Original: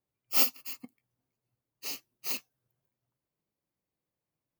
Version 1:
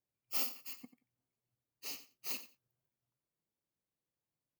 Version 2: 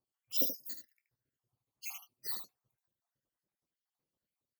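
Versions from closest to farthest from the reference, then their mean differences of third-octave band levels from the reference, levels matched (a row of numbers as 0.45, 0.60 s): 1, 2; 4.0, 9.0 dB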